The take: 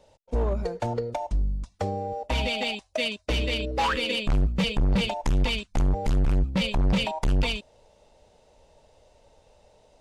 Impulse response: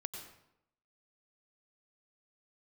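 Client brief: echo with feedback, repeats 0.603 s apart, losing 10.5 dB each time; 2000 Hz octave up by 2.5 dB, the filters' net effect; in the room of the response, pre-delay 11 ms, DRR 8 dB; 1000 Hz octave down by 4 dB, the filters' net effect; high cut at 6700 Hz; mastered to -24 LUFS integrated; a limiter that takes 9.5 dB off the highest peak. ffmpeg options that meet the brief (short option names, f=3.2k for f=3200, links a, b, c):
-filter_complex "[0:a]lowpass=6.7k,equalizer=f=1k:t=o:g=-6,equalizer=f=2k:t=o:g=4.5,alimiter=level_in=1.5dB:limit=-24dB:level=0:latency=1,volume=-1.5dB,aecho=1:1:603|1206|1809:0.299|0.0896|0.0269,asplit=2[a][b];[1:a]atrim=start_sample=2205,adelay=11[c];[b][c]afir=irnorm=-1:irlink=0,volume=-6.5dB[d];[a][d]amix=inputs=2:normalize=0,volume=9dB"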